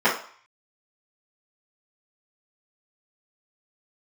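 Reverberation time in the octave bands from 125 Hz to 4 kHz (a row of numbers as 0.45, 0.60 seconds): 0.35, 0.35, 0.40, 0.55, 0.55, 0.50 seconds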